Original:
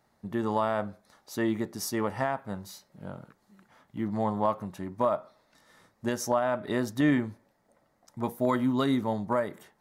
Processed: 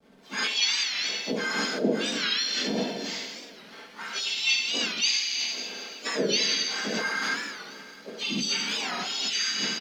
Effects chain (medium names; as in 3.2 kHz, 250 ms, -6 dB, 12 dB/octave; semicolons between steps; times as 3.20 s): spectrum inverted on a logarithmic axis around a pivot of 1.7 kHz; elliptic low-pass 5.1 kHz, stop band 40 dB; treble shelf 2.9 kHz +3 dB; two-slope reverb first 0.99 s, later 3.5 s, from -19 dB, DRR -7 dB; dynamic bell 840 Hz, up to -4 dB, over -58 dBFS, Q 5.9; in parallel at +2 dB: compressor with a negative ratio -37 dBFS, ratio -0.5; on the sum: hysteresis with a dead band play -49.5 dBFS; flange 1.7 Hz, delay 1.2 ms, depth 6.1 ms, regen -58%; comb 4.5 ms, depth 54%; harmony voices -4 st -11 dB, +5 st -6 dB; warped record 45 rpm, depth 160 cents